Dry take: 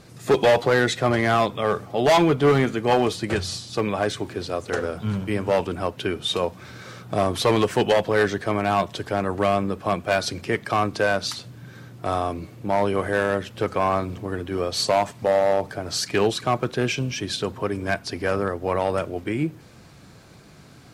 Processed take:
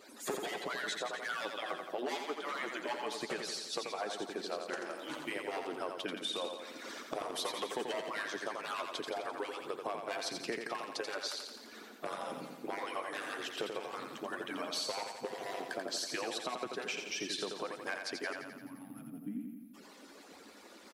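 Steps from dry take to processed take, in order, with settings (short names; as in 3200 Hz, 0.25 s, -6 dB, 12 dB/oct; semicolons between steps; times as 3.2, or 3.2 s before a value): median-filter separation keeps percussive; HPF 250 Hz 12 dB/oct; spectral gain 18.33–19.74, 320–10000 Hz -30 dB; compressor 6:1, threshold -37 dBFS, peak gain reduction 20 dB; feedback echo 86 ms, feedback 60%, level -5.5 dB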